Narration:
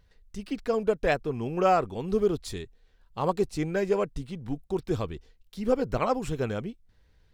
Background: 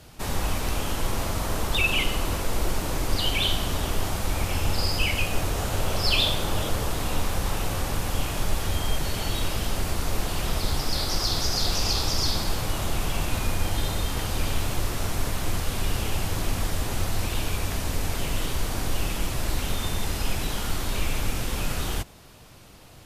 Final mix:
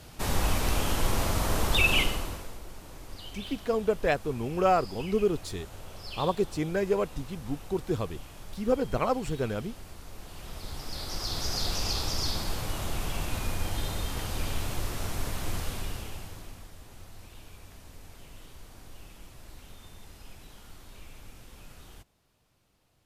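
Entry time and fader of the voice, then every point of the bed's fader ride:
3.00 s, -1.0 dB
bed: 1.99 s 0 dB
2.61 s -18.5 dB
10.14 s -18.5 dB
11.52 s -5.5 dB
15.65 s -5.5 dB
16.70 s -21.5 dB

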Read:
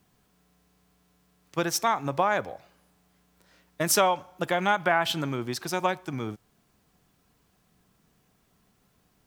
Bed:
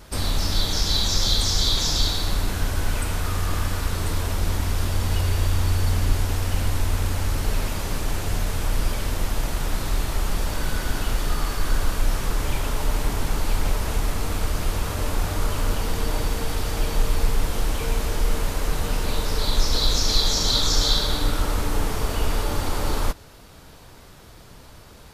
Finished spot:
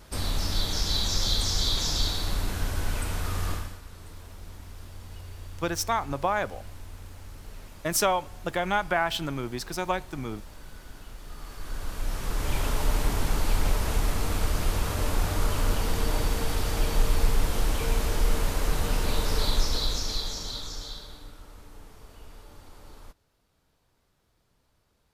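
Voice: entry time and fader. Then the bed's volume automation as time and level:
4.05 s, -2.0 dB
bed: 3.51 s -5 dB
3.81 s -20 dB
11.18 s -20 dB
12.61 s -2 dB
19.41 s -2 dB
21.39 s -24.5 dB

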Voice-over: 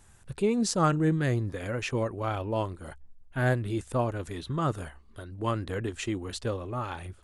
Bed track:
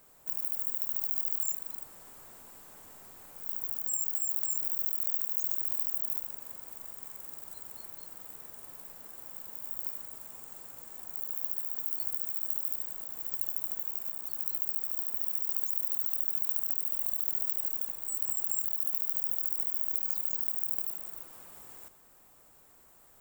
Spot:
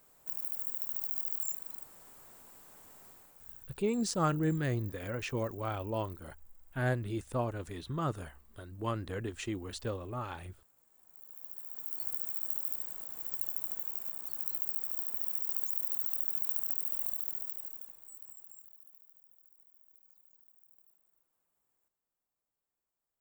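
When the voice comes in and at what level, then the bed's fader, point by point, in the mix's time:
3.40 s, -5.5 dB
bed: 3.10 s -4 dB
3.79 s -21.5 dB
10.88 s -21.5 dB
12.10 s -2.5 dB
17.03 s -2.5 dB
19.28 s -31 dB

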